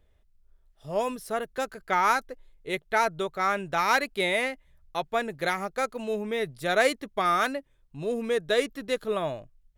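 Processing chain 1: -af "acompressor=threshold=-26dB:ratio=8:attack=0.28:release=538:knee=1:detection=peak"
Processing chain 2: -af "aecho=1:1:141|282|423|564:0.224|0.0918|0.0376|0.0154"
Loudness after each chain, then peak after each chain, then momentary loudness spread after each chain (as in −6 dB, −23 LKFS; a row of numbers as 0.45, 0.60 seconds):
−36.0, −27.5 LKFS; −23.0, −9.5 dBFS; 7, 10 LU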